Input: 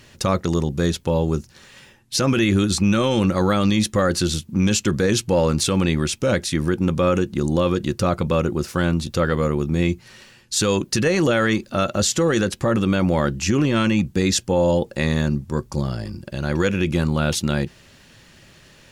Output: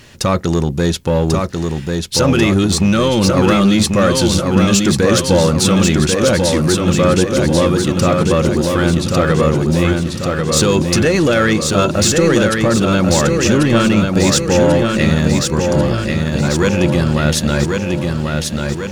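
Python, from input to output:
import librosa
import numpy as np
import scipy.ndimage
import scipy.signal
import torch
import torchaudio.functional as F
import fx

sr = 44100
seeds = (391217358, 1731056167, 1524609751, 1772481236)

p1 = 10.0 ** (-18.5 / 20.0) * (np.abs((x / 10.0 ** (-18.5 / 20.0) + 3.0) % 4.0 - 2.0) - 1.0)
p2 = x + (p1 * 10.0 ** (-9.5 / 20.0))
p3 = fx.echo_feedback(p2, sr, ms=1091, feedback_pct=55, wet_db=-4.0)
y = p3 * 10.0 ** (4.0 / 20.0)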